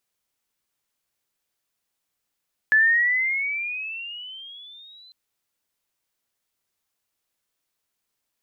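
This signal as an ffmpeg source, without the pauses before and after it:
-f lavfi -i "aevalsrc='pow(10,(-13-33.5*t/2.4)/20)*sin(2*PI*1720*2.4/(15*log(2)/12)*(exp(15*log(2)/12*t/2.4)-1))':d=2.4:s=44100"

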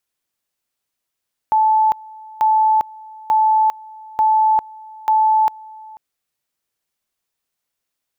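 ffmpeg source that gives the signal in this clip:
-f lavfi -i "aevalsrc='pow(10,(-11-23.5*gte(mod(t,0.89),0.4))/20)*sin(2*PI*871*t)':d=4.45:s=44100"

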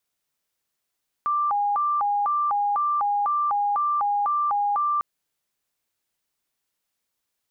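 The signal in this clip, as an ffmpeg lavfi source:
-f lavfi -i "aevalsrc='0.1*sin(2*PI*(999*t+181/2*(0.5-abs(mod(2*t,1)-0.5))))':d=3.75:s=44100"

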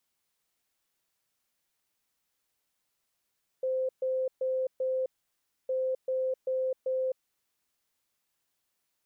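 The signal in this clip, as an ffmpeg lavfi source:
-f lavfi -i "aevalsrc='0.0473*sin(2*PI*519*t)*clip(min(mod(mod(t,2.06),0.39),0.26-mod(mod(t,2.06),0.39))/0.005,0,1)*lt(mod(t,2.06),1.56)':d=4.12:s=44100"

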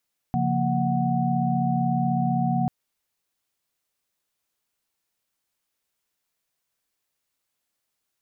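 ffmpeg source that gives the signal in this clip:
-f lavfi -i "aevalsrc='0.0501*(sin(2*PI*138.59*t)+sin(2*PI*174.61*t)+sin(2*PI*233.08*t)+sin(2*PI*739.99*t))':d=2.34:s=44100"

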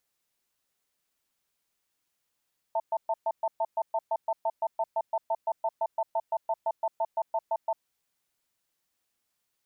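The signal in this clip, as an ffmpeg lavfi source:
-f lavfi -i "aevalsrc='0.0447*(sin(2*PI*664*t)+sin(2*PI*894*t))*clip(min(mod(t,0.17),0.05-mod(t,0.17))/0.005,0,1)':d=4.99:s=44100"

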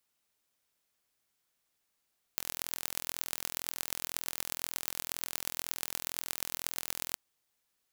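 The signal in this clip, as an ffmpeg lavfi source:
-f lavfi -i "aevalsrc='0.596*eq(mod(n,1050),0)*(0.5+0.5*eq(mod(n,5250),0))':d=4.78:s=44100"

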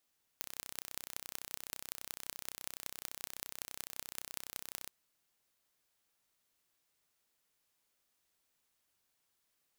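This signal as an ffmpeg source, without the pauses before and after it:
-f lavfi -i "aevalsrc='0.282*eq(mod(n,1387),0)*(0.5+0.5*eq(mod(n,8322),0))':d=4.49:s=44100"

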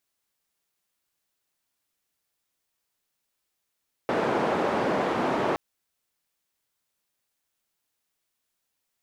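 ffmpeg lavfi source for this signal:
-f lavfi -i "anoisesrc=c=white:d=1.47:r=44100:seed=1,highpass=f=210,lowpass=f=770,volume=-5.2dB"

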